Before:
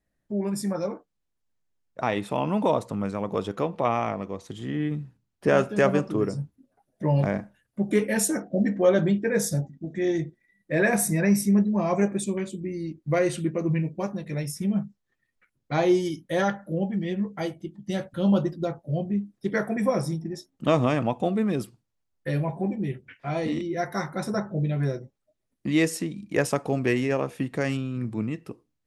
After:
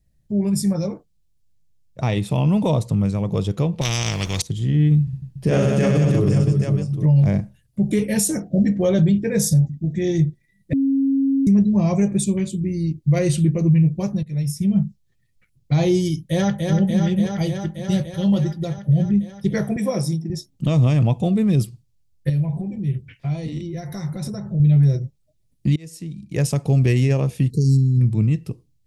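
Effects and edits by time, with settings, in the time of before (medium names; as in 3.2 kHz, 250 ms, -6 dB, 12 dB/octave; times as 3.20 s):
3.81–4.42 s: spectrum-flattening compressor 4:1
5.03–7.05 s: reverse bouncing-ball echo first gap 40 ms, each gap 1.5×, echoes 6, each echo -2 dB
10.73–11.47 s: bleep 272 Hz -18 dBFS
14.23–14.83 s: fade in, from -16 dB
16.22–16.64 s: echo throw 290 ms, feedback 80%, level -3.5 dB
18.10–18.78 s: bass shelf 390 Hz -6.5 dB
19.76–20.30 s: high-pass 240 Hz
22.29–24.60 s: compression, threshold -32 dBFS
25.76–26.78 s: fade in
27.50–28.01 s: brick-wall FIR band-stop 490–3900 Hz
whole clip: FFT filter 150 Hz 0 dB, 240 Hz -14 dB, 430 Hz -15 dB, 1.5 kHz -23 dB, 2.3 kHz -15 dB, 4.5 kHz -9 dB; loudness maximiser +25.5 dB; trim -8.5 dB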